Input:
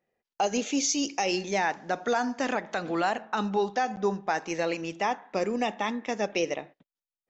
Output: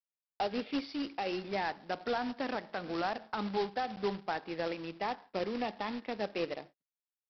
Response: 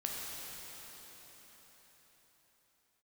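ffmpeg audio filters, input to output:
-af "agate=range=-33dB:threshold=-39dB:ratio=3:detection=peak,highshelf=frequency=2500:gain=-8.5,aresample=11025,acrusher=bits=2:mode=log:mix=0:aa=0.000001,aresample=44100,volume=-7dB"

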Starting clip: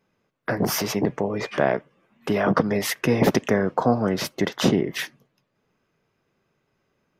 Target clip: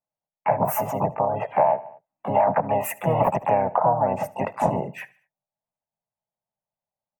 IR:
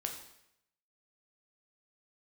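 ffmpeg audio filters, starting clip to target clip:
-filter_complex "[0:a]afftdn=noise_reduction=26:noise_floor=-33,firequalizer=gain_entry='entry(140,0);entry(260,-16);entry(410,-10);entry(630,13);entry(1100,-9);entry(2000,-6);entry(2800,-30);entry(5000,-27);entry(7400,1);entry(14000,2)':delay=0.05:min_phase=1,aecho=1:1:74|148|222:0.0841|0.0395|0.0186,acompressor=threshold=-18dB:ratio=6,asplit=2[link_01][link_02];[link_02]asetrate=58866,aresample=44100,atempo=0.749154,volume=-1dB[link_03];[link_01][link_03]amix=inputs=2:normalize=0"

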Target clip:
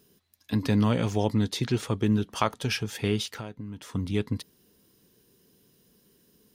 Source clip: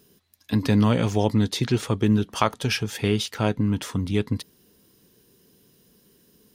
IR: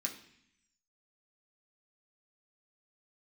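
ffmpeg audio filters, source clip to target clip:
-filter_complex "[0:a]asettb=1/sr,asplit=3[link_01][link_02][link_03];[link_01]atrim=end=3.384[link_04];[link_02]atrim=start=3.38:end=3.95,asetpts=PTS-STARTPTS,afade=type=in:duration=0.004:curve=qsin,afade=type=out:start_time=0.566:duration=0.004:curve=qsin,acompressor=threshold=-33dB:ratio=4[link_05];[link_03]atrim=start=3.946[link_06];[link_04][link_05]acrossfade=duration=0.004:curve1=hsin:curve2=qsin[link_07];[link_07][link_06]acrossfade=duration=0.004:curve1=qsin:curve2=hsin,volume=-4dB"

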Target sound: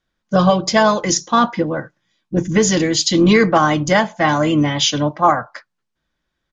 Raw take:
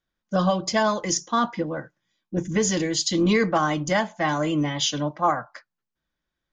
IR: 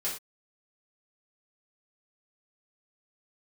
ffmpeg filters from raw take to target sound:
-filter_complex "[0:a]lowpass=7500,asplit=2[link_01][link_02];[link_02]asetrate=33038,aresample=44100,atempo=1.33484,volume=-18dB[link_03];[link_01][link_03]amix=inputs=2:normalize=0,volume=8dB"

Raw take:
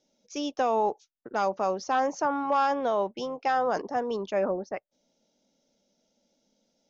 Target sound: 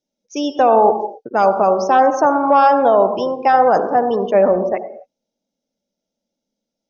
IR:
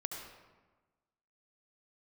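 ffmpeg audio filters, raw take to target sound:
-filter_complex "[0:a]asplit=2[link_01][link_02];[1:a]atrim=start_sample=2205,afade=type=out:start_time=0.33:duration=0.01,atrim=end_sample=14994,lowshelf=frequency=340:gain=7[link_03];[link_02][link_03]afir=irnorm=-1:irlink=0,volume=0.5dB[link_04];[link_01][link_04]amix=inputs=2:normalize=0,afftdn=noise_reduction=19:noise_floor=-37,adynamicequalizer=threshold=0.0316:dfrequency=660:dqfactor=1.3:tfrequency=660:tqfactor=1.3:attack=5:release=100:ratio=0.375:range=2.5:mode=boostabove:tftype=bell,volume=3.5dB"

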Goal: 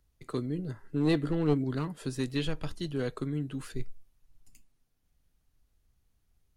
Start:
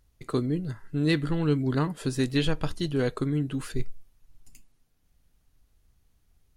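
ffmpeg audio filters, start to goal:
ffmpeg -i in.wav -filter_complex "[0:a]asettb=1/sr,asplit=3[link_01][link_02][link_03];[link_01]atrim=end=0.584[link_04];[link_02]atrim=start=0.58:end=1.64,asetpts=PTS-STARTPTS,afade=type=in:duration=0.004:curve=qsin,afade=type=out:start_time=1.056:duration=0.004:curve=qsin,equalizer=frequency=420:width=0.71:gain=7.5[link_05];[link_03]atrim=start=1.636[link_06];[link_04][link_05]acrossfade=duration=0.004:curve1=hsin:curve2=qsin[link_07];[link_07][link_06]acrossfade=duration=0.004:curve1=qsin:curve2=hsin,acrossover=split=150|2200[link_08][link_09][link_10];[link_09]aeval=exprs='clip(val(0),-1,0.0944)':channel_layout=same[link_11];[link_08][link_11][link_10]amix=inputs=3:normalize=0,volume=-6dB" out.wav

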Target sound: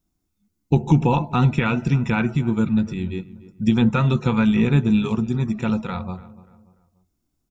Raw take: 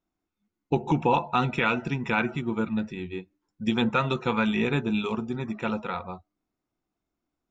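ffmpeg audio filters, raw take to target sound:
ffmpeg -i in.wav -filter_complex "[0:a]acrossover=split=3000[link_01][link_02];[link_02]acompressor=threshold=-46dB:ratio=4:attack=1:release=60[link_03];[link_01][link_03]amix=inputs=2:normalize=0,bass=frequency=250:gain=14,treble=frequency=4000:gain=13,asplit=2[link_04][link_05];[link_05]adelay=292,lowpass=frequency=1600:poles=1,volume=-17dB,asplit=2[link_06][link_07];[link_07]adelay=292,lowpass=frequency=1600:poles=1,volume=0.4,asplit=2[link_08][link_09];[link_09]adelay=292,lowpass=frequency=1600:poles=1,volume=0.4[link_10];[link_04][link_06][link_08][link_10]amix=inputs=4:normalize=0" out.wav

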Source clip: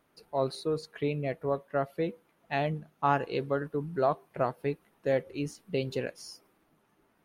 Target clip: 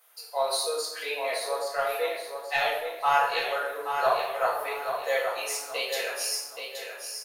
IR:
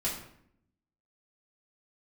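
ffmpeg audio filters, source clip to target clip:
-filter_complex "[0:a]highpass=frequency=550:width=0.5412,highpass=frequency=550:width=1.3066,aemphasis=mode=production:type=riaa,asoftclip=type=tanh:threshold=-14.5dB,aecho=1:1:826|1652|2478|3304:0.447|0.152|0.0516|0.0176[link_01];[1:a]atrim=start_sample=2205,asetrate=30870,aresample=44100[link_02];[link_01][link_02]afir=irnorm=-1:irlink=0,volume=-1dB"

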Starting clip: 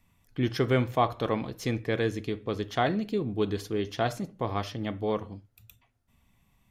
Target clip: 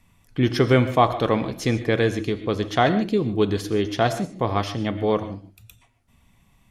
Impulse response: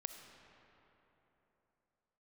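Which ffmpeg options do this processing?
-filter_complex "[1:a]atrim=start_sample=2205,atrim=end_sample=3528,asetrate=22491,aresample=44100[link_01];[0:a][link_01]afir=irnorm=-1:irlink=0,volume=7.5dB"

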